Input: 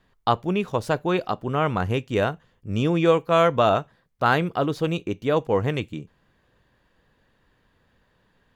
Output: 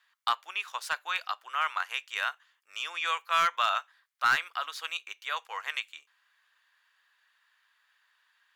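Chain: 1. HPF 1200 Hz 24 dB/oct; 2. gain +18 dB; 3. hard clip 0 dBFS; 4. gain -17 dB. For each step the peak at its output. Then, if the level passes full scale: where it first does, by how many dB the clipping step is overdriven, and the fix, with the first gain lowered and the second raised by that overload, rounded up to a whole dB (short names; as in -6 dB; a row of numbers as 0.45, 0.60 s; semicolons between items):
-9.5, +8.5, 0.0, -17.0 dBFS; step 2, 8.5 dB; step 2 +9 dB, step 4 -8 dB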